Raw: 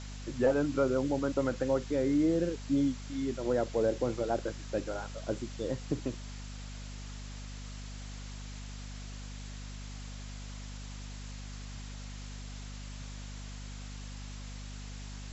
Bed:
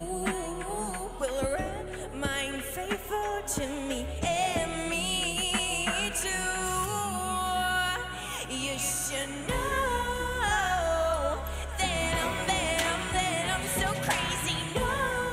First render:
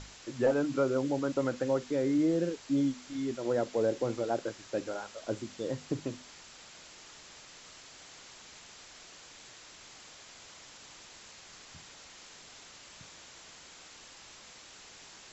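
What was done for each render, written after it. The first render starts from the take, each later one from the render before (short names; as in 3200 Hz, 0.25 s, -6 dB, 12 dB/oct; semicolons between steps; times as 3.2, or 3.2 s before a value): notches 50/100/150/200/250 Hz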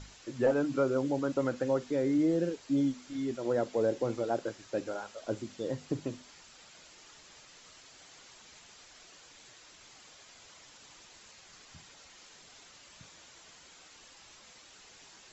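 denoiser 6 dB, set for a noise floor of -53 dBFS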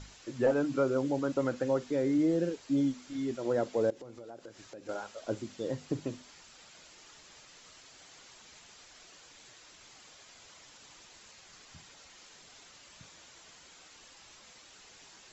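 3.9–4.89 compressor 5:1, threshold -45 dBFS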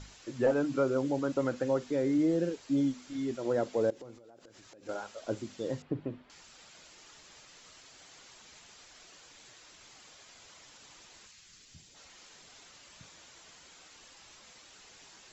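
4.16–4.83 compressor 12:1, threshold -51 dBFS; 5.82–6.3 air absorption 490 m; 11.26–11.94 bell 490 Hz -> 1300 Hz -14.5 dB 2 oct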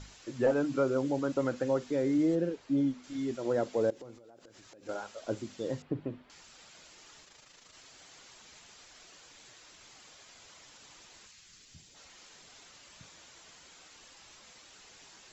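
2.35–3.04 LPF 2400 Hz 6 dB/oct; 7.24–7.74 AM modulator 26 Hz, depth 40%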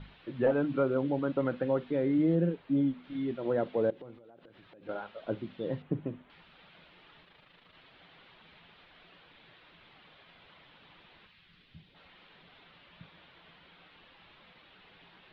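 steep low-pass 3700 Hz 48 dB/oct; bell 170 Hz +9.5 dB 0.34 oct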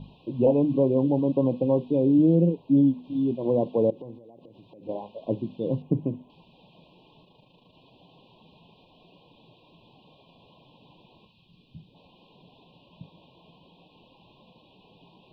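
FFT band-reject 1100–2400 Hz; graphic EQ 125/250/500/1000/2000 Hz +8/+7/+4/+3/-4 dB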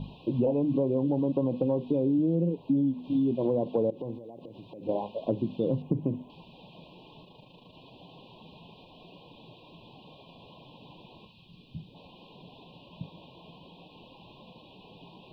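in parallel at -2.5 dB: limiter -22 dBFS, peak gain reduction 11.5 dB; on the sum: compressor, threshold -23 dBFS, peak gain reduction 9.5 dB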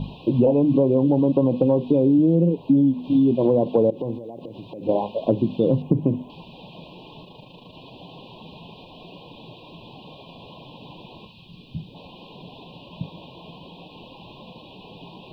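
gain +8.5 dB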